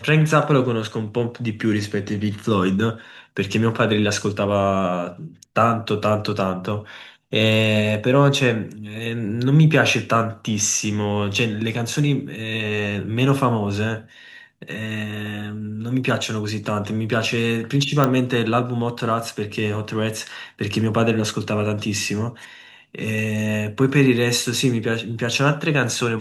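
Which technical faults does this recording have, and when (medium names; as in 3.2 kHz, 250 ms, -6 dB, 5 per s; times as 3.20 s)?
18.04 s: pop -5 dBFS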